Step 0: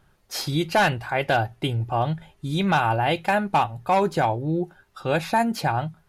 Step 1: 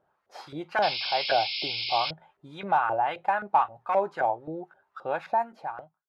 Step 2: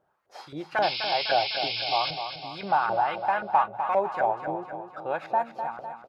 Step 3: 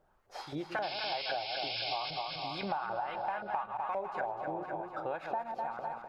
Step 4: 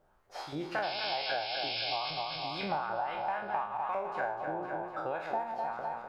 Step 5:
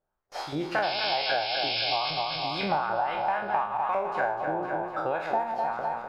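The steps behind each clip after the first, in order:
fade-out on the ending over 0.94 s; auto-filter band-pass saw up 3.8 Hz 520–1,500 Hz; sound drawn into the spectrogram noise, 0:00.82–0:02.11, 2,100–5,400 Hz −33 dBFS; level +1 dB
repeating echo 252 ms, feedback 54%, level −8.5 dB
delay that plays each chunk backwards 111 ms, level −10 dB; downward compressor 6 to 1, threshold −33 dBFS, peak gain reduction 15 dB; background noise brown −74 dBFS
peak hold with a decay on every bin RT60 0.51 s
noise gate with hold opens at −51 dBFS; level +6.5 dB

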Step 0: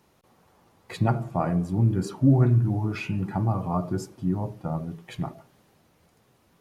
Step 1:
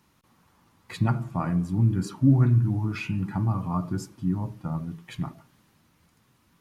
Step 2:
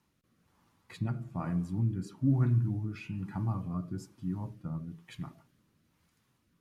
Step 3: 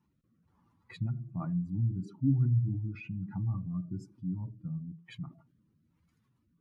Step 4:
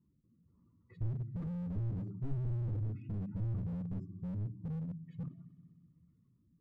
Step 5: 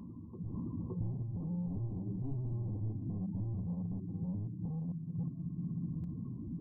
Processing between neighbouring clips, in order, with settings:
flat-topped bell 540 Hz −8.5 dB 1.3 octaves
rotating-speaker cabinet horn 1.1 Hz; level −6.5 dB
expanding power law on the bin magnitudes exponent 1.7
moving average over 55 samples; echo machine with several playback heads 63 ms, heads first and third, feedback 70%, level −20 dB; slew-rate limiting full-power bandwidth 1.8 Hz; level +2.5 dB
camcorder AGC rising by 57 dB per second; Chebyshev low-pass with heavy ripple 1,100 Hz, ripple 6 dB; backwards echo 566 ms −8 dB; level +2 dB

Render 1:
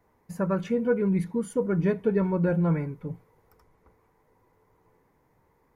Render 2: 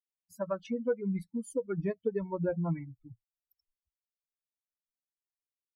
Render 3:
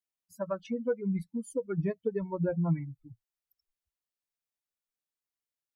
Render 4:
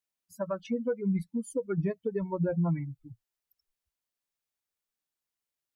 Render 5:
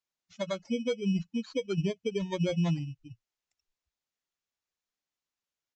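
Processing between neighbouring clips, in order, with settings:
spectral dynamics exaggerated over time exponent 3; dynamic equaliser 560 Hz, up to +6 dB, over −40 dBFS, Q 1; downward compressor 2 to 1, threshold −32 dBFS, peak gain reduction 8.5 dB
dynamic equaliser 150 Hz, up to +6 dB, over −46 dBFS, Q 3.3
brickwall limiter −24 dBFS, peak gain reduction 5 dB; level +2.5 dB
samples in bit-reversed order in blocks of 16 samples; downsampling to 16,000 Hz

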